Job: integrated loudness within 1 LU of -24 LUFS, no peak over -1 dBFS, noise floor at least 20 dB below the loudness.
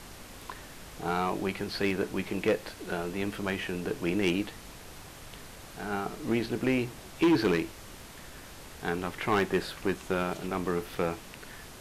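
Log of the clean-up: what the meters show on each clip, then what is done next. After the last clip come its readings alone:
clipped samples 0.5%; clipping level -19.0 dBFS; noise floor -47 dBFS; noise floor target -51 dBFS; loudness -31.0 LUFS; peak level -19.0 dBFS; loudness target -24.0 LUFS
-> clip repair -19 dBFS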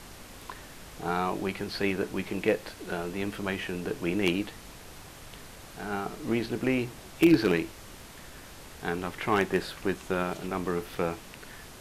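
clipped samples 0.0%; noise floor -47 dBFS; noise floor target -50 dBFS
-> noise print and reduce 6 dB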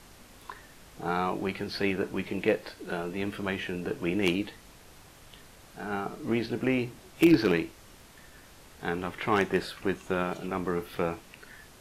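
noise floor -53 dBFS; loudness -30.0 LUFS; peak level -10.0 dBFS; loudness target -24.0 LUFS
-> trim +6 dB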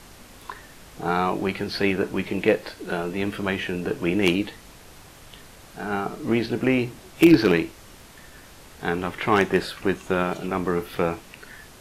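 loudness -24.0 LUFS; peak level -4.0 dBFS; noise floor -47 dBFS

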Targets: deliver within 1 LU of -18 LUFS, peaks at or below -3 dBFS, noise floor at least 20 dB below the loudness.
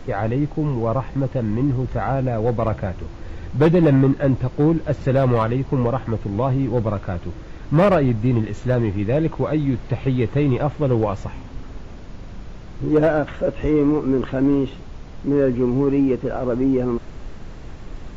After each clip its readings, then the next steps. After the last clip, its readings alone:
clipped samples 0.8%; clipping level -9.5 dBFS; noise floor -37 dBFS; noise floor target -41 dBFS; loudness -20.5 LUFS; peak level -9.5 dBFS; loudness target -18.0 LUFS
-> clip repair -9.5 dBFS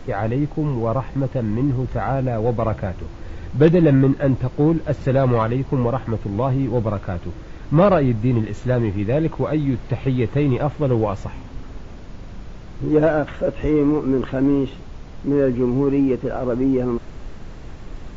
clipped samples 0.0%; noise floor -37 dBFS; noise floor target -40 dBFS
-> noise print and reduce 6 dB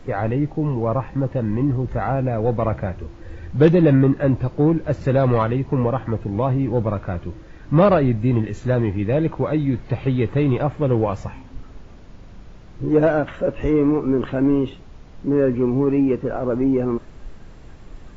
noise floor -42 dBFS; loudness -20.0 LUFS; peak level -2.5 dBFS; loudness target -18.0 LUFS
-> trim +2 dB; peak limiter -3 dBFS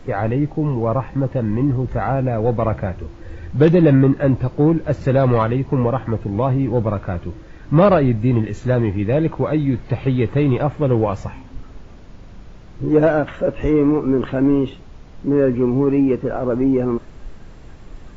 loudness -18.5 LUFS; peak level -3.0 dBFS; noise floor -40 dBFS

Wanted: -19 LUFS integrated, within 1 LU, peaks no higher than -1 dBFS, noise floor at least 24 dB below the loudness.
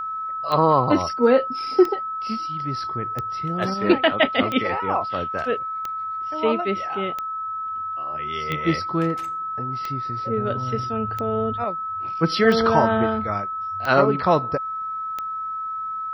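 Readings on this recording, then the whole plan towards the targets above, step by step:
clicks found 12; steady tone 1.3 kHz; tone level -26 dBFS; loudness -23.0 LUFS; peak level -2.5 dBFS; loudness target -19.0 LUFS
-> de-click; band-stop 1.3 kHz, Q 30; trim +4 dB; peak limiter -1 dBFS

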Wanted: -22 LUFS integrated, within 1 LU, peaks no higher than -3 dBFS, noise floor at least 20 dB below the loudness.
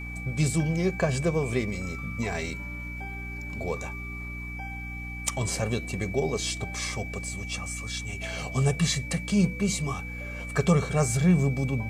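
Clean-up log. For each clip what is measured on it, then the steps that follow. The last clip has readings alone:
hum 60 Hz; highest harmonic 300 Hz; hum level -35 dBFS; steady tone 2.3 kHz; tone level -38 dBFS; loudness -28.5 LUFS; peak level -10.0 dBFS; loudness target -22.0 LUFS
-> de-hum 60 Hz, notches 5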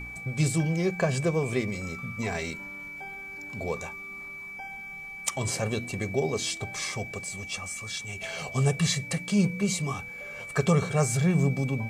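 hum not found; steady tone 2.3 kHz; tone level -38 dBFS
-> band-stop 2.3 kHz, Q 30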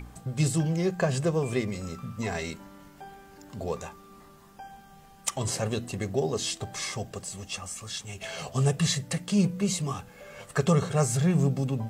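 steady tone not found; loudness -29.0 LUFS; peak level -10.5 dBFS; loudness target -22.0 LUFS
-> trim +7 dB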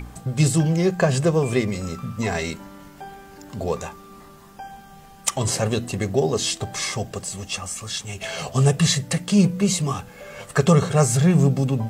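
loudness -22.0 LUFS; peak level -3.5 dBFS; noise floor -45 dBFS

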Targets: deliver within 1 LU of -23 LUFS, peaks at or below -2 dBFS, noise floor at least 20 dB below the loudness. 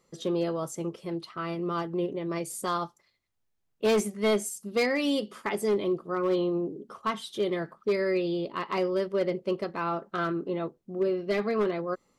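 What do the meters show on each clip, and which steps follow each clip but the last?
clipped samples 1.1%; clipping level -20.0 dBFS; loudness -29.5 LUFS; peak level -20.0 dBFS; loudness target -23.0 LUFS
-> clip repair -20 dBFS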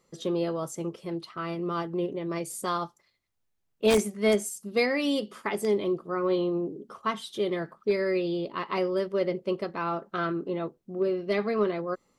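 clipped samples 0.0%; loudness -29.0 LUFS; peak level -11.0 dBFS; loudness target -23.0 LUFS
-> trim +6 dB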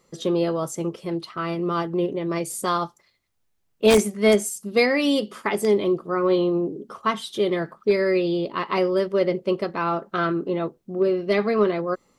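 loudness -23.0 LUFS; peak level -5.0 dBFS; noise floor -69 dBFS

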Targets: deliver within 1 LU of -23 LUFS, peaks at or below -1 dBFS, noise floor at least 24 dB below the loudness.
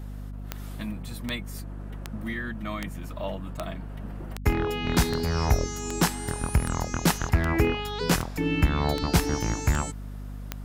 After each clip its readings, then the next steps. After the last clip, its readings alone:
clicks found 14; hum 50 Hz; highest harmonic 250 Hz; hum level -34 dBFS; loudness -28.0 LUFS; peak level -9.0 dBFS; loudness target -23.0 LUFS
-> de-click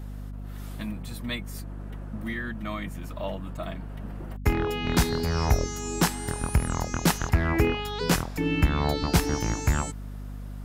clicks found 0; hum 50 Hz; highest harmonic 250 Hz; hum level -34 dBFS
-> de-hum 50 Hz, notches 5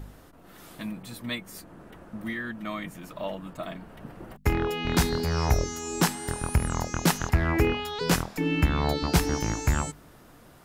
hum not found; loudness -28.0 LUFS; peak level -9.0 dBFS; loudness target -23.0 LUFS
-> trim +5 dB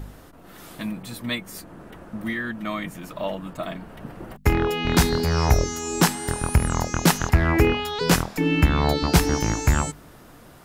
loudness -23.0 LUFS; peak level -4.0 dBFS; noise floor -47 dBFS

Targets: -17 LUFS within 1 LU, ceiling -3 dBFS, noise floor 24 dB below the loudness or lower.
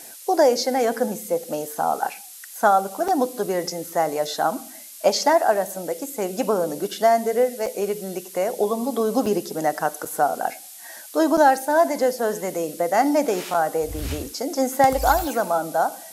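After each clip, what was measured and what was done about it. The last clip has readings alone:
dropouts 6; longest dropout 4.5 ms; noise floor -41 dBFS; noise floor target -47 dBFS; loudness -22.5 LUFS; peak level -5.0 dBFS; loudness target -17.0 LUFS
-> interpolate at 3.08/7.66/9.26/10.05/11.37/13.54 s, 4.5 ms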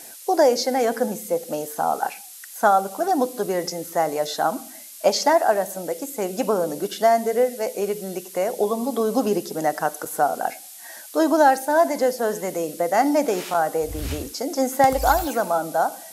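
dropouts 0; noise floor -41 dBFS; noise floor target -47 dBFS
-> noise print and reduce 6 dB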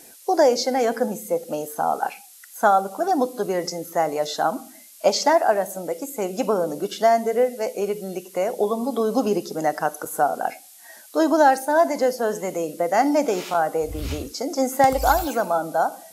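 noise floor -47 dBFS; loudness -22.5 LUFS; peak level -5.0 dBFS; loudness target -17.0 LUFS
-> trim +5.5 dB; peak limiter -3 dBFS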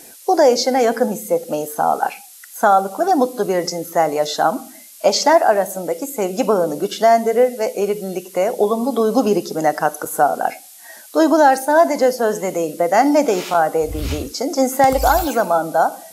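loudness -17.5 LUFS; peak level -3.0 dBFS; noise floor -42 dBFS

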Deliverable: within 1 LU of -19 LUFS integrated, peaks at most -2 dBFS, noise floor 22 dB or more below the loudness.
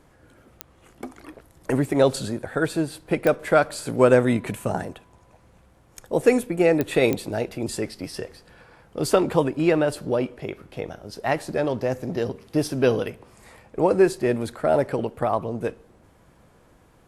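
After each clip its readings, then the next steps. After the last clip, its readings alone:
clicks found 4; loudness -23.5 LUFS; peak level -3.0 dBFS; loudness target -19.0 LUFS
-> de-click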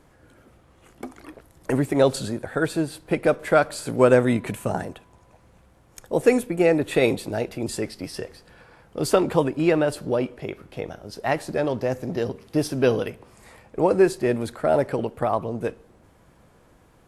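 clicks found 0; loudness -23.5 LUFS; peak level -3.0 dBFS; loudness target -19.0 LUFS
-> trim +4.5 dB; peak limiter -2 dBFS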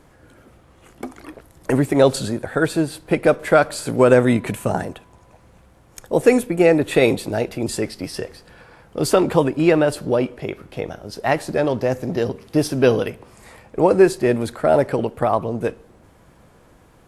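loudness -19.0 LUFS; peak level -2.0 dBFS; noise floor -52 dBFS

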